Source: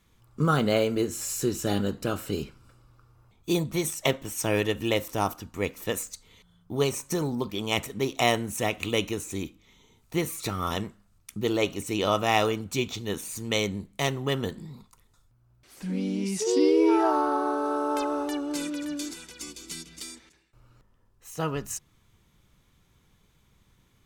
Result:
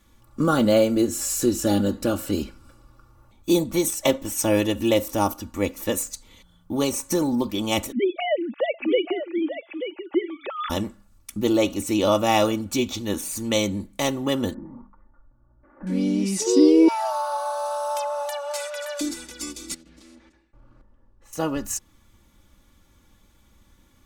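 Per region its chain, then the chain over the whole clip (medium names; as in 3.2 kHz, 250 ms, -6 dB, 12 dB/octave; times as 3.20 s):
7.92–10.70 s: formants replaced by sine waves + delay 884 ms -10 dB
14.54–15.87 s: steep low-pass 1.6 kHz + hum notches 50/100/150/200/250/300/350/400 Hz + comb 3.4 ms, depth 36%
16.88–19.01 s: steep high-pass 570 Hz 72 dB/octave + peaking EQ 1 kHz -4.5 dB 2 oct + three bands compressed up and down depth 70%
19.74–21.33 s: low-pass 1.3 kHz 6 dB/octave + compression 8:1, threshold -52 dBFS + loudspeaker Doppler distortion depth 0.34 ms
whole clip: peaking EQ 2.7 kHz -3.5 dB 1.5 oct; comb 3.5 ms, depth 66%; dynamic bell 1.7 kHz, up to -5 dB, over -40 dBFS, Q 1; trim +5 dB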